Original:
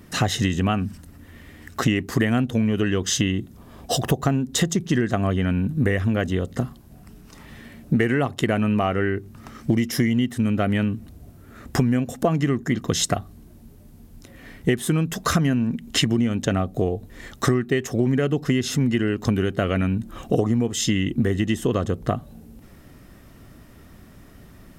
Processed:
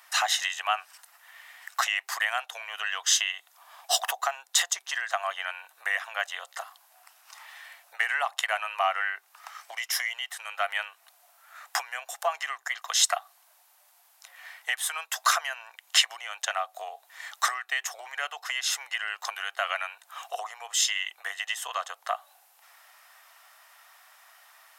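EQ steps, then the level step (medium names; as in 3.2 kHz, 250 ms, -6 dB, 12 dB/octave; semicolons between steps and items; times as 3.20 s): steep high-pass 730 Hz 48 dB/octave; +1.5 dB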